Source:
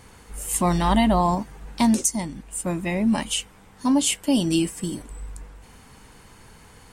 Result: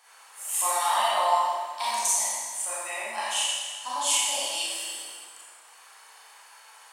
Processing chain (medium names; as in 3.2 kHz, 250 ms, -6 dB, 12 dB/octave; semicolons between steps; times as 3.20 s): high-pass 730 Hz 24 dB/octave; band-stop 2.1 kHz, Q 22; Schroeder reverb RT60 1.6 s, combs from 28 ms, DRR -9 dB; trim -7.5 dB